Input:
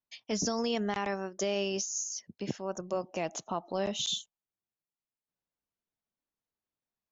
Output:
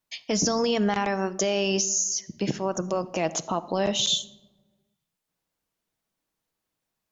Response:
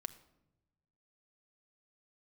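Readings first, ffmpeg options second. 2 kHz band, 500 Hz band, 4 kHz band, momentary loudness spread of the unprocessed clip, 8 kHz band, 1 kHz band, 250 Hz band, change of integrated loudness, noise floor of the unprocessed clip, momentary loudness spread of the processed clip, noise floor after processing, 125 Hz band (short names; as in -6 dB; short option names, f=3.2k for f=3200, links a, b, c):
+7.5 dB, +7.0 dB, +8.5 dB, 6 LU, n/a, +7.5 dB, +8.0 dB, +8.0 dB, under -85 dBFS, 6 LU, -84 dBFS, +9.0 dB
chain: -filter_complex "[0:a]alimiter=level_in=1dB:limit=-24dB:level=0:latency=1:release=69,volume=-1dB,asplit=2[a][b];[1:a]atrim=start_sample=2205,asetrate=39249,aresample=44100[c];[b][c]afir=irnorm=-1:irlink=0,volume=10dB[d];[a][d]amix=inputs=2:normalize=0"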